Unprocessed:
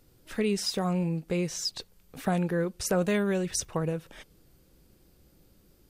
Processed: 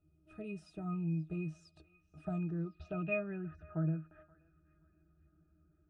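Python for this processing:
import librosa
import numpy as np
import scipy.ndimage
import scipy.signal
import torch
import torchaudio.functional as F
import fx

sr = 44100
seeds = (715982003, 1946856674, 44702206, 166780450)

y = fx.octave_resonator(x, sr, note='D#', decay_s=0.16)
y = fx.echo_banded(y, sr, ms=528, feedback_pct=44, hz=2600.0, wet_db=-17.5)
y = fx.filter_sweep_lowpass(y, sr, from_hz=9600.0, to_hz=1600.0, start_s=2.2, end_s=3.42, q=4.9)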